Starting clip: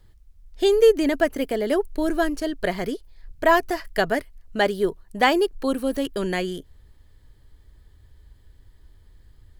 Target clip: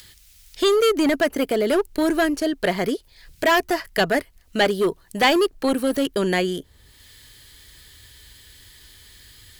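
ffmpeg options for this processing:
-filter_complex "[0:a]highpass=f=110:p=1,acrossover=split=2000[a][b];[a]volume=20.5dB,asoftclip=hard,volume=-20.5dB[c];[b]acompressor=mode=upward:threshold=-37dB:ratio=2.5[d];[c][d]amix=inputs=2:normalize=0,volume=5dB"

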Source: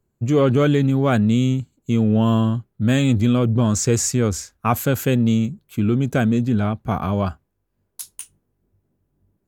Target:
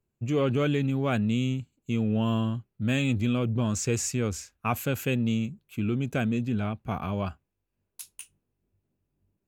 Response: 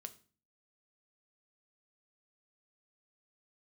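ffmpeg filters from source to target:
-af "equalizer=f=2.6k:w=3.2:g=9,volume=-9dB"

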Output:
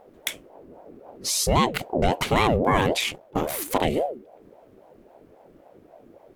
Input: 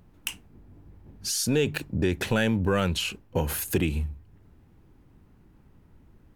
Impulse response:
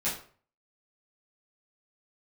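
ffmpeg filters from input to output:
-filter_complex "[0:a]asettb=1/sr,asplit=3[a][b][c];[a]atrim=end=3.114[d];[b]atrim=start=3.11:end=3.85,asetpts=PTS-STARTPTS,afade=t=in:d=0.004:c=qsin,afade=t=out:st=0.736:d=0.004:c=qsin,aeval=exprs='if(lt(val(0),0),0.251*val(0),val(0))':c=same[e];[c]atrim=start=3.846[f];[d][e]acrossfade=d=0.004:c1=hsin:c2=qsin[g];[g][f]acrossfade=d=0.004:c1=qsin:c2=hsin,aeval=exprs='val(0)*sin(2*PI*470*n/s+470*0.4/3.7*sin(2*PI*3.7*n/s))':c=same,volume=6.5dB"

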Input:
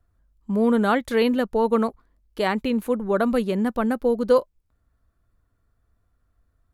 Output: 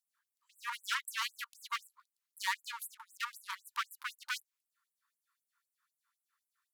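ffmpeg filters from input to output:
-af "volume=25.5dB,asoftclip=hard,volume=-25.5dB,afftfilt=real='re*gte(b*sr/1024,860*pow(7800/860,0.5+0.5*sin(2*PI*3.9*pts/sr)))':imag='im*gte(b*sr/1024,860*pow(7800/860,0.5+0.5*sin(2*PI*3.9*pts/sr)))':win_size=1024:overlap=0.75,volume=1.5dB"

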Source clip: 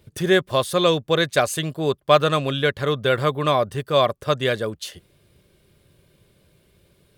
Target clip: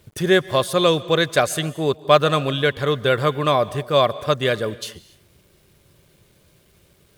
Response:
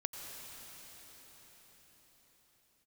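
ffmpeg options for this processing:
-filter_complex "[0:a]acrusher=bits=9:mix=0:aa=0.000001,asplit=2[a][b];[1:a]atrim=start_sample=2205,afade=t=out:st=0.26:d=0.01,atrim=end_sample=11907,asetrate=32193,aresample=44100[c];[b][c]afir=irnorm=-1:irlink=0,volume=-10dB[d];[a][d]amix=inputs=2:normalize=0,volume=-1dB"

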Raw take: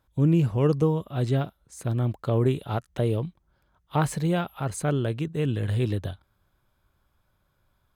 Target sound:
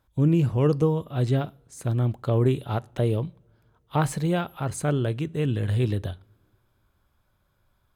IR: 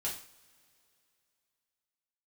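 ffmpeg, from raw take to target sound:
-filter_complex "[0:a]asplit=2[a][b];[1:a]atrim=start_sample=2205,asetrate=48510,aresample=44100,lowshelf=f=410:g=8[c];[b][c]afir=irnorm=-1:irlink=0,volume=-21dB[d];[a][d]amix=inputs=2:normalize=0"

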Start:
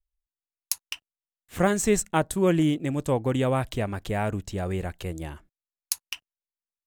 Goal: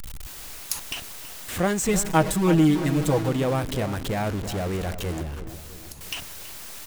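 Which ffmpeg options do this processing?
-filter_complex "[0:a]aeval=exprs='val(0)+0.5*0.0562*sgn(val(0))':c=same,asettb=1/sr,asplit=3[a][b][c];[a]atrim=end=1.884[d];[b]atrim=start=1.88:end=3.29,asetpts=PTS-STARTPTS,afade=t=in:d=0.004:c=qsin,afade=t=out:st=1.406:d=0.004:c=qsin,aecho=1:1:6.3:0.93,atrim=end_sample=62181[e];[c]atrim=start=3.286[f];[d][e]acrossfade=d=0.004:c1=hsin:c2=qsin[g];[g][f]acrossfade=d=0.004:c1=qsin:c2=hsin,asettb=1/sr,asplit=3[h][i][j];[h]atrim=end=5.214[k];[i]atrim=start=5.21:end=6.01,asetpts=PTS-STARTPTS,afade=t=in:d=0.004:c=qsin,afade=t=out:st=0.796:d=0.004:c=qsin,acrossover=split=280[l][m];[m]acompressor=threshold=-38dB:ratio=8[n];[l][n]amix=inputs=2:normalize=0[o];[j]atrim=start=6.006[p];[k][o]acrossfade=d=0.004:c1=hsin:c2=qsin[q];[q][p]acrossfade=d=0.004:c1=qsin:c2=hsin,asplit=2[r][s];[s]adelay=328,lowpass=f=1.6k:p=1,volume=-11dB,asplit=2[t][u];[u]adelay=328,lowpass=f=1.6k:p=1,volume=0.5,asplit=2[v][w];[w]adelay=328,lowpass=f=1.6k:p=1,volume=0.5,asplit=2[x][y];[y]adelay=328,lowpass=f=1.6k:p=1,volume=0.5,asplit=2[z][aa];[aa]adelay=328,lowpass=f=1.6k:p=1,volume=0.5[ab];[r][t][v][x][z][ab]amix=inputs=6:normalize=0,volume=-3dB"

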